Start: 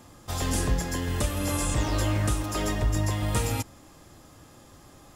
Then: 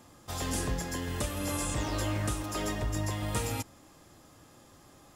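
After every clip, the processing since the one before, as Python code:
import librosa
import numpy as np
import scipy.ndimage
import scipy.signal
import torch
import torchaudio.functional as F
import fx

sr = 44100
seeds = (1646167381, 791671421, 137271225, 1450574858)

y = fx.low_shelf(x, sr, hz=88.0, db=-6.5)
y = y * librosa.db_to_amplitude(-4.0)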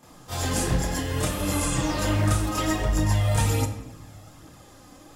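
y = fx.chorus_voices(x, sr, voices=2, hz=0.67, base_ms=29, depth_ms=4.3, mix_pct=70)
y = fx.room_shoebox(y, sr, seeds[0], volume_m3=350.0, walls='mixed', distance_m=0.56)
y = y * librosa.db_to_amplitude(8.5)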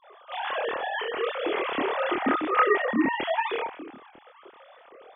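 y = fx.sine_speech(x, sr)
y = fx.doubler(y, sr, ms=26.0, db=-2.0)
y = y * librosa.db_to_amplitude(-5.0)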